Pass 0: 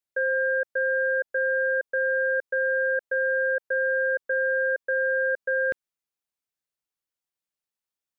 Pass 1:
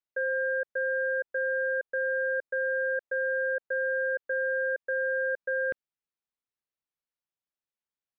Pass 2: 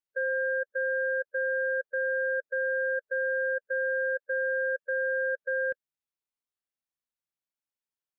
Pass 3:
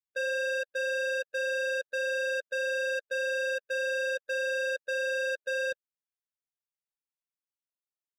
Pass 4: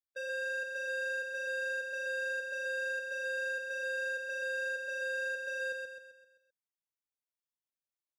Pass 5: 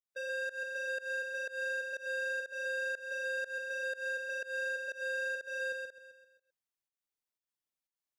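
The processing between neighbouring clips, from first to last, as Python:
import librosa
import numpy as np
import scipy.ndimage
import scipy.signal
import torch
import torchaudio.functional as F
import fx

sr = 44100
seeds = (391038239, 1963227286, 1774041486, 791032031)

y1 = fx.air_absorb(x, sr, metres=160.0)
y1 = F.gain(torch.from_numpy(y1), -3.5).numpy()
y2 = fx.hpss(y1, sr, part='percussive', gain_db=-10)
y3 = fx.leveller(y2, sr, passes=3)
y3 = F.gain(torch.from_numpy(y3), -5.0).numpy()
y4 = fx.echo_feedback(y3, sr, ms=130, feedback_pct=47, wet_db=-4.0)
y4 = F.gain(torch.from_numpy(y4), -8.5).numpy()
y5 = fx.volume_shaper(y4, sr, bpm=122, per_beat=1, depth_db=-23, release_ms=177.0, shape='fast start')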